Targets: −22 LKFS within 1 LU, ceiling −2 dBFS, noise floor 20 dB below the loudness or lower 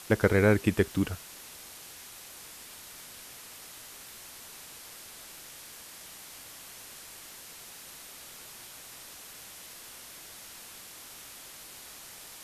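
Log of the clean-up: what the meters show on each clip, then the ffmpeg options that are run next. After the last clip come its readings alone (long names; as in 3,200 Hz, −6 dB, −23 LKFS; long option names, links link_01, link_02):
background noise floor −48 dBFS; target noise floor −56 dBFS; integrated loudness −35.5 LKFS; sample peak −8.5 dBFS; target loudness −22.0 LKFS
→ -af "afftdn=noise_reduction=8:noise_floor=-48"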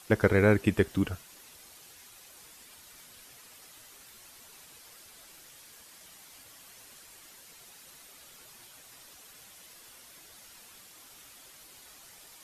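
background noise floor −54 dBFS; integrated loudness −26.5 LKFS; sample peak −8.5 dBFS; target loudness −22.0 LKFS
→ -af "volume=4.5dB"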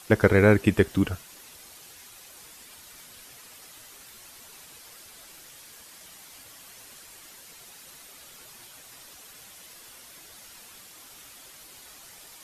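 integrated loudness −22.0 LKFS; sample peak −4.0 dBFS; background noise floor −49 dBFS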